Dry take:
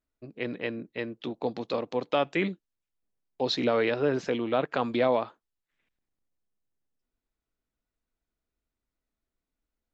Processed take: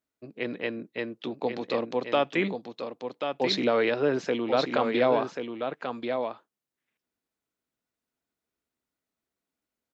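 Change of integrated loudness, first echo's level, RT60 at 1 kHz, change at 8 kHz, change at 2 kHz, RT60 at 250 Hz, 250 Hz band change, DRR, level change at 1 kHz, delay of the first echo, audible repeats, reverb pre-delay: +0.5 dB, -6.5 dB, none, n/a, +2.5 dB, none, +1.5 dB, none, +2.5 dB, 1.086 s, 1, none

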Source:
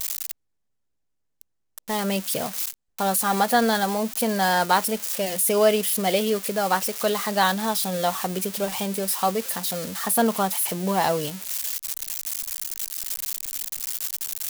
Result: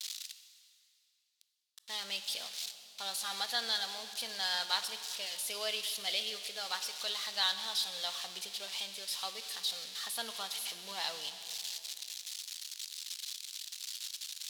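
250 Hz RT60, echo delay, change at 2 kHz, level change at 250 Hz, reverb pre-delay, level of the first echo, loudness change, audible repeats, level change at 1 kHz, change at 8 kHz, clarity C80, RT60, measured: 3.0 s, none, -12.5 dB, -32.5 dB, 18 ms, none, -12.5 dB, none, -20.0 dB, -13.0 dB, 11.5 dB, 2.8 s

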